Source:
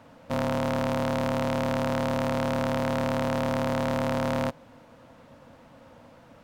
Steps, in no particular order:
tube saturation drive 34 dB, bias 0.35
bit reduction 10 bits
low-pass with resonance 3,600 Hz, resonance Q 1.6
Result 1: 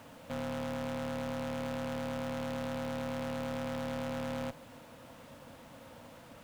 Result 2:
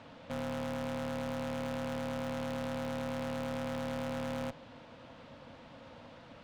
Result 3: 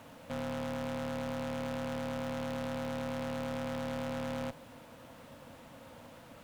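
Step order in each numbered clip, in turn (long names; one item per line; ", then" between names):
low-pass with resonance, then tube saturation, then bit reduction
bit reduction, then low-pass with resonance, then tube saturation
low-pass with resonance, then bit reduction, then tube saturation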